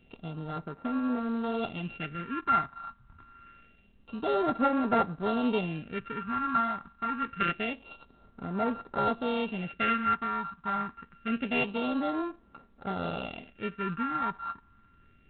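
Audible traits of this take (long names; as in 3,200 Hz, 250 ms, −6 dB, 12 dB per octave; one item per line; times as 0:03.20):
a buzz of ramps at a fixed pitch in blocks of 32 samples
phaser sweep stages 4, 0.26 Hz, lowest notch 470–3,000 Hz
G.726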